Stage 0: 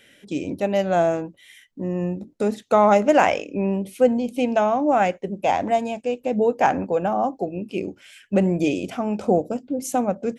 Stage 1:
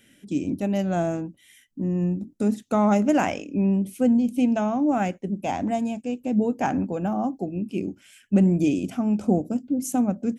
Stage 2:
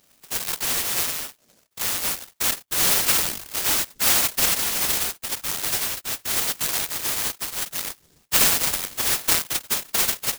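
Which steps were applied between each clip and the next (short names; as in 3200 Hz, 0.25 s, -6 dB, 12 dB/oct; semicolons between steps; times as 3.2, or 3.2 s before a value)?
graphic EQ 250/500/1000/2000/4000 Hz +5/-10/-6/-6/-7 dB; gain +1 dB
flange 1.2 Hz, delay 3 ms, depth 6.7 ms, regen -47%; inverted band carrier 2600 Hz; noise-modulated delay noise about 5900 Hz, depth 0.39 ms; gain +3 dB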